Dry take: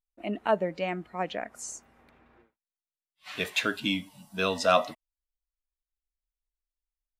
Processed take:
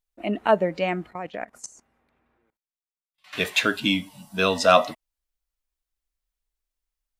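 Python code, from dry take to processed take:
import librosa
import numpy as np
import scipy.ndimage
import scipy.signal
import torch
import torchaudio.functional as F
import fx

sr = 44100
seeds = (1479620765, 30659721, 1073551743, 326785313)

y = fx.level_steps(x, sr, step_db=19, at=(1.1, 3.33))
y = F.gain(torch.from_numpy(y), 6.0).numpy()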